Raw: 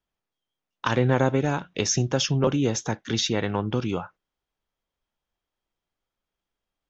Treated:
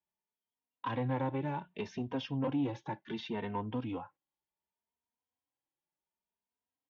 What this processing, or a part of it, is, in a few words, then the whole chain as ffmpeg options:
barber-pole flanger into a guitar amplifier: -filter_complex "[0:a]asplit=2[a][b];[b]adelay=3,afreqshift=0.67[c];[a][c]amix=inputs=2:normalize=1,asoftclip=type=tanh:threshold=-19.5dB,highpass=85,equalizer=f=270:t=q:w=4:g=6,equalizer=f=930:t=q:w=4:g=10,equalizer=f=1.3k:t=q:w=4:g=-7,lowpass=f=3.4k:w=0.5412,lowpass=f=3.4k:w=1.3066,volume=-9dB"

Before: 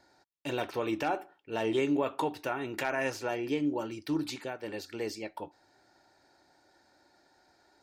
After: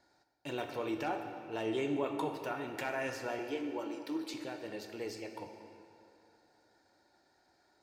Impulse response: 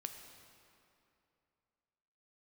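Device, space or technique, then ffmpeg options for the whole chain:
stairwell: -filter_complex "[0:a]asettb=1/sr,asplit=3[a][b][c];[a]atrim=end=3.394[d];[b]atrim=start=3.39:end=4.34,asetpts=PTS-STARTPTS,afade=t=in:d=0.004:c=qsin,afade=t=out:st=0.946:d=0.004:c=qsin,highpass=f=260:w=0.5412,highpass=f=260:w=1.3066[e];[c]atrim=start=4.336[f];[d][e]acrossfade=d=0.004:c1=hsin:c2=qsin[g];[g][f]acrossfade=d=0.004:c1=qsin:c2=hsin[h];[1:a]atrim=start_sample=2205[i];[h][i]afir=irnorm=-1:irlink=0,volume=-2dB"

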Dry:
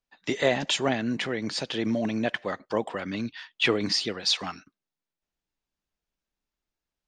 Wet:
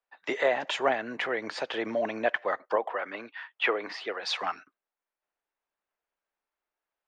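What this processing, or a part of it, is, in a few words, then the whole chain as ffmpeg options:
DJ mixer with the lows and highs turned down: -filter_complex "[0:a]acrossover=split=430 2300:gain=0.0708 1 0.141[a][b][c];[a][b][c]amix=inputs=3:normalize=0,alimiter=limit=-19dB:level=0:latency=1:release=458,asettb=1/sr,asplit=3[d][e][f];[d]atrim=end=2.764[g];[e]atrim=start=2.76:end=4.22,asetpts=PTS-STARTPTS,afade=t=in:d=0.004:c=qsin,afade=t=out:st=1.456:d=0.004:c=qsin,bass=f=250:g=-12,treble=f=4k:g=-11[h];[f]atrim=start=4.216[i];[g][h]acrossfade=d=0.004:c1=hsin:c2=qsin[j];[j][i]acrossfade=d=0.004:c1=qsin:c2=hsin,volume=5.5dB"

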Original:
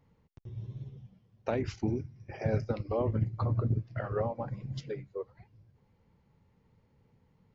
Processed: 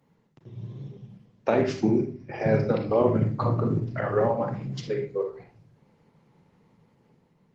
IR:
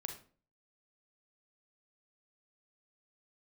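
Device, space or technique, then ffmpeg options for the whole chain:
far-field microphone of a smart speaker: -filter_complex "[0:a]asettb=1/sr,asplit=3[a][b][c];[a]atrim=end=1.834[d];[b]atrim=start=1.83:end=2.92,asetpts=PTS-STARTPTS,afade=t=in:d=0.004:c=qsin,afade=t=out:st=1.086:d=0.004:c=qsin,lowpass=f=5.3k:w=0.5412,lowpass=f=5.3k:w=1.3066[e];[c]atrim=start=2.916[f];[d][e]acrossfade=d=0.004:c1=hsin:c2=qsin[g];[g][f]acrossfade=d=0.004:c1=qsin:c2=hsin[h];[1:a]atrim=start_sample=2205[i];[h][i]afir=irnorm=-1:irlink=0,highpass=f=140:w=0.5412,highpass=f=140:w=1.3066,dynaudnorm=f=190:g=7:m=4.5dB,volume=7.5dB" -ar 48000 -c:a libopus -b:a 16k

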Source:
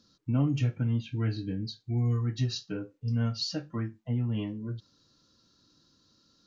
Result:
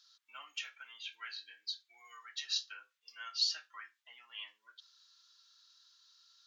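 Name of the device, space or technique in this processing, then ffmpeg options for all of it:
headphones lying on a table: -filter_complex "[0:a]highpass=f=1.3k:w=0.5412,highpass=f=1.3k:w=1.3066,equalizer=f=3.4k:t=o:w=0.36:g=5,asettb=1/sr,asplit=3[a][b][c];[a]atrim=end=1.514[d];[b]atrim=start=1.51:end=3.21,asetpts=PTS-STARTPTS,afade=t=in:d=0.004:c=qsin,afade=t=out:st=1.696:d=0.004:c=qsin,highpass=250[e];[c]atrim=start=3.206[f];[d][e]acrossfade=d=0.004:c1=hsin:c2=qsin[g];[g][f]acrossfade=d=0.004:c1=qsin:c2=hsin,volume=1dB"

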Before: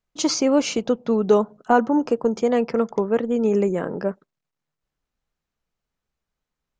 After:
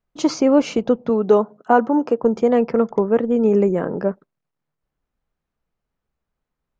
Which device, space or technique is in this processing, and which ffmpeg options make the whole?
through cloth: -filter_complex "[0:a]asettb=1/sr,asplit=3[a][b][c];[a]atrim=end=1.094[d];[b]atrim=start=1.09:end=2.23,asetpts=PTS-STARTPTS,afade=t=in:d=0.004:c=qsin,afade=t=out:st=1.136:d=0.004:c=qsin,highpass=f=250:p=1[e];[c]atrim=start=2.226[f];[d][e]acrossfade=d=0.004:c1=hsin:c2=qsin[g];[g][f]acrossfade=d=0.004:c1=qsin:c2=hsin,highshelf=f=2.9k:g=-13.5,volume=4dB"

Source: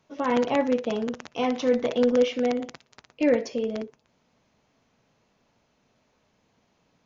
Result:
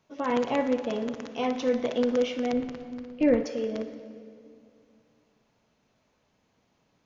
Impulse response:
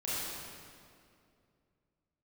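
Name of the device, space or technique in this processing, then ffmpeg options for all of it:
saturated reverb return: -filter_complex "[0:a]asplit=2[a][b];[1:a]atrim=start_sample=2205[c];[b][c]afir=irnorm=-1:irlink=0,asoftclip=type=tanh:threshold=-12dB,volume=-13dB[d];[a][d]amix=inputs=2:normalize=0,asettb=1/sr,asplit=3[e][f][g];[e]atrim=end=2.534[h];[f]atrim=start=2.53:end=3.44,asetpts=PTS-STARTPTS,afade=t=in:d=0.004:c=qsin,afade=t=out:st=0.906:d=0.004:c=qsin,aemphasis=mode=reproduction:type=bsi[i];[g]atrim=start=3.436[j];[h][i]acrossfade=d=0.004:c1=hsin:c2=qsin[k];[k][j]acrossfade=d=0.004:c1=qsin:c2=hsin,volume=-4dB"

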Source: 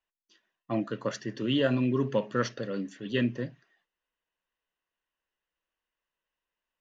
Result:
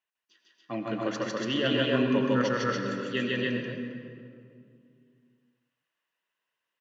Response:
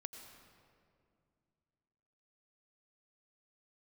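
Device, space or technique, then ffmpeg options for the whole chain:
stadium PA: -filter_complex "[0:a]highpass=120,equalizer=f=2.2k:t=o:w=2.2:g=6,aecho=1:1:151.6|285.7:1|0.891[a];[1:a]atrim=start_sample=2205[b];[a][b]afir=irnorm=-1:irlink=0"

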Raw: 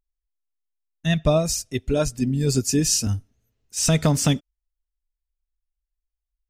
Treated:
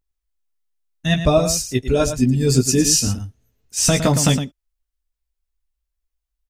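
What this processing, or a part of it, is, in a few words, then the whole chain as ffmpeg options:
slapback doubling: -filter_complex "[0:a]asplit=3[a][b][c];[b]adelay=16,volume=-5dB[d];[c]adelay=112,volume=-9.5dB[e];[a][d][e]amix=inputs=3:normalize=0,volume=3.5dB"

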